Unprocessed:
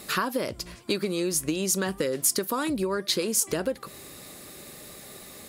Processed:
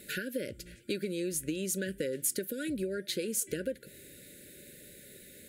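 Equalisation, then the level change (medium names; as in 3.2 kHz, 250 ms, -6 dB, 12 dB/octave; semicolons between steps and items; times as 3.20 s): brick-wall FIR band-stop 610–1400 Hz; peaking EQ 5.2 kHz -8.5 dB 0.6 oct; -6.5 dB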